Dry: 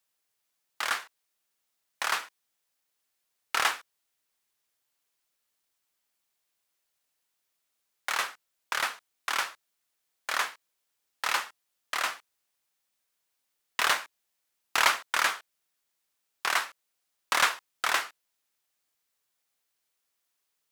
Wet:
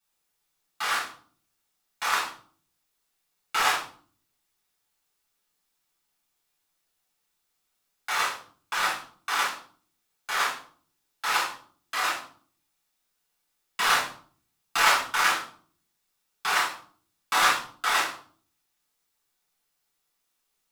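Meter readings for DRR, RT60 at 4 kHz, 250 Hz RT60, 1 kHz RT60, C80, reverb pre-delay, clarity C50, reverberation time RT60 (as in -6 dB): -9.0 dB, 0.35 s, 0.70 s, 0.45 s, 11.0 dB, 3 ms, 5.0 dB, 0.50 s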